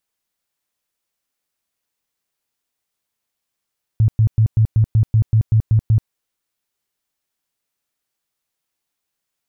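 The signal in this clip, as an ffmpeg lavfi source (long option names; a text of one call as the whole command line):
ffmpeg -f lavfi -i "aevalsrc='0.335*sin(2*PI*110*mod(t,0.19))*lt(mod(t,0.19),9/110)':duration=2.09:sample_rate=44100" out.wav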